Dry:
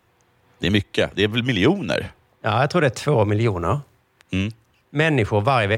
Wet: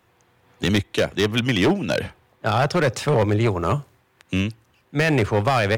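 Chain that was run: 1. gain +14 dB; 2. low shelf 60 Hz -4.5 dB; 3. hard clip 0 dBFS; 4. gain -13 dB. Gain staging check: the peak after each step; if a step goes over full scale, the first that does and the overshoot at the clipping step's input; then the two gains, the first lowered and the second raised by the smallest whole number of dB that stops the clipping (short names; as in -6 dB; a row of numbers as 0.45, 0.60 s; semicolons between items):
+8.5, +8.5, 0.0, -13.0 dBFS; step 1, 8.5 dB; step 1 +5 dB, step 4 -4 dB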